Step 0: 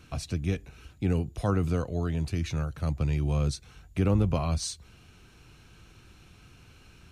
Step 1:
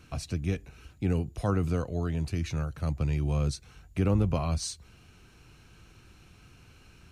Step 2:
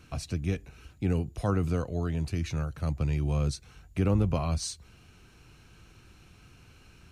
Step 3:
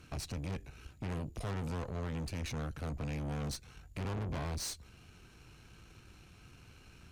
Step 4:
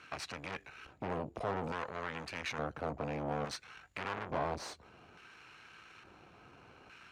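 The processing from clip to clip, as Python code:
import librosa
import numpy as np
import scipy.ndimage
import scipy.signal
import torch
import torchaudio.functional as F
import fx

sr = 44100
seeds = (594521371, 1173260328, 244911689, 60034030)

y1 = fx.peak_eq(x, sr, hz=3500.0, db=-3.5, octaves=0.22)
y1 = y1 * 10.0 ** (-1.0 / 20.0)
y2 = y1
y3 = fx.tube_stage(y2, sr, drive_db=38.0, bias=0.75)
y3 = y3 * 10.0 ** (2.5 / 20.0)
y4 = fx.filter_lfo_bandpass(y3, sr, shape='square', hz=0.58, low_hz=750.0, high_hz=1600.0, q=0.99)
y4 = y4 * 10.0 ** (9.5 / 20.0)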